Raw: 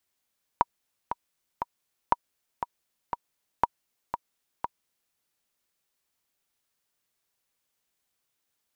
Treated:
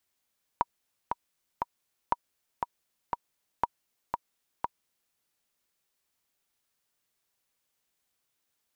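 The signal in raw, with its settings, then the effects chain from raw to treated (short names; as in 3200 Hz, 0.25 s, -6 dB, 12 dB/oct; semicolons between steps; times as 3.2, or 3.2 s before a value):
metronome 119 bpm, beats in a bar 3, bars 3, 955 Hz, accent 9 dB -6.5 dBFS
limiter -11.5 dBFS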